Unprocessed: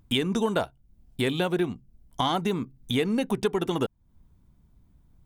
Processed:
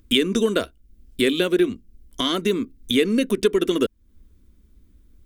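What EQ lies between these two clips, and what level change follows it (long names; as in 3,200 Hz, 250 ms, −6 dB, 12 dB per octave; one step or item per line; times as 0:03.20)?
phaser with its sweep stopped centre 340 Hz, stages 4
+8.0 dB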